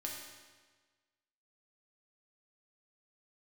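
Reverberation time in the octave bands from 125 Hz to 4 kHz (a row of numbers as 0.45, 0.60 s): 1.4, 1.4, 1.4, 1.4, 1.4, 1.3 s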